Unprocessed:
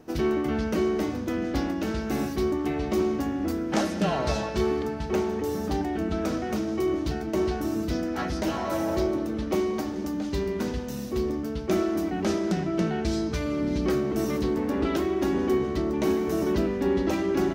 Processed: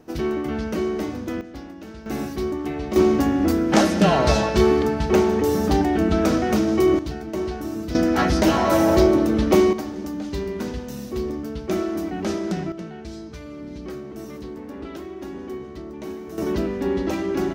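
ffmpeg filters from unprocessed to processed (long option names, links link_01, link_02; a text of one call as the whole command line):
ffmpeg -i in.wav -af "asetnsamples=nb_out_samples=441:pad=0,asendcmd='1.41 volume volume -10dB;2.06 volume volume 0dB;2.96 volume volume 8.5dB;6.99 volume volume -1dB;7.95 volume volume 10dB;9.73 volume volume 0.5dB;12.72 volume volume -9dB;16.38 volume volume 1dB',volume=0.5dB" out.wav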